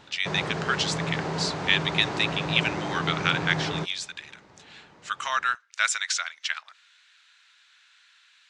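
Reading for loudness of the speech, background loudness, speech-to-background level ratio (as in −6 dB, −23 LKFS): −27.0 LKFS, −31.0 LKFS, 4.0 dB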